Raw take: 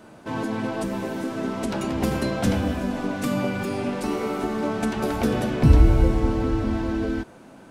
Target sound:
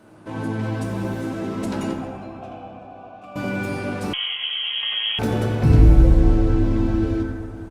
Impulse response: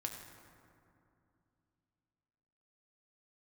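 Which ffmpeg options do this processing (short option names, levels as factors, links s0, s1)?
-filter_complex "[0:a]asettb=1/sr,asplit=3[s0][s1][s2];[s0]atrim=end=1.934[s3];[s1]atrim=start=1.93:end=3.36,asetpts=PTS-STARTPTS,afade=t=in:d=0.004:c=qsin,afade=t=out:st=1.426:d=0.004:c=qsin,asplit=3[s4][s5][s6];[s4]bandpass=f=730:t=q:w=8,volume=1[s7];[s5]bandpass=f=1090:t=q:w=8,volume=0.501[s8];[s6]bandpass=f=2440:t=q:w=8,volume=0.355[s9];[s7][s8][s9]amix=inputs=3:normalize=0[s10];[s2]atrim=start=3.356[s11];[s3][s10]acrossfade=d=0.004:c1=hsin:c2=qsin[s12];[s12][s11]acrossfade=d=0.004:c1=qsin:c2=hsin,asplit=2[s13][s14];[s14]adelay=91,lowpass=f=1300:p=1,volume=0.531,asplit=2[s15][s16];[s16]adelay=91,lowpass=f=1300:p=1,volume=0.49,asplit=2[s17][s18];[s18]adelay=91,lowpass=f=1300:p=1,volume=0.49,asplit=2[s19][s20];[s20]adelay=91,lowpass=f=1300:p=1,volume=0.49,asplit=2[s21][s22];[s22]adelay=91,lowpass=f=1300:p=1,volume=0.49,asplit=2[s23][s24];[s24]adelay=91,lowpass=f=1300:p=1,volume=0.49[s25];[s13][s15][s17][s19][s21][s23][s25]amix=inputs=7:normalize=0[s26];[1:a]atrim=start_sample=2205[s27];[s26][s27]afir=irnorm=-1:irlink=0,asettb=1/sr,asplit=3[s28][s29][s30];[s28]atrim=end=4.134[s31];[s29]atrim=start=4.13:end=5.19,asetpts=PTS-STARTPTS,afade=t=in:d=0.004:c=qsin,afade=t=out:st=1.056:d=0.004:c=qsin,lowpass=f=2900:t=q:w=0.5098,lowpass=f=2900:t=q:w=0.6013,lowpass=f=2900:t=q:w=0.9,lowpass=f=2900:t=q:w=2.563,afreqshift=-3400[s32];[s30]atrim=start=5.186[s33];[s31][s32]acrossfade=d=0.004:c1=hsin:c2=qsin[s34];[s34][s33]acrossfade=d=0.004:c1=qsin:c2=hsin" -ar 48000 -c:a libopus -b:a 32k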